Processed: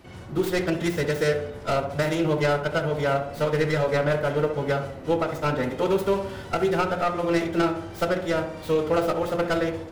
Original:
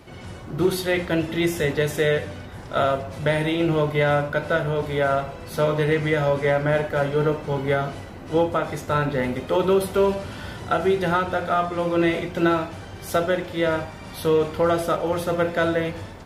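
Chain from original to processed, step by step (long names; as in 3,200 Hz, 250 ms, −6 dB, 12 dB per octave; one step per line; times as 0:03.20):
stylus tracing distortion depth 0.19 ms
phase-vocoder stretch with locked phases 0.61×
tape delay 66 ms, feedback 66%, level −6.5 dB, low-pass 1,200 Hz
level −2.5 dB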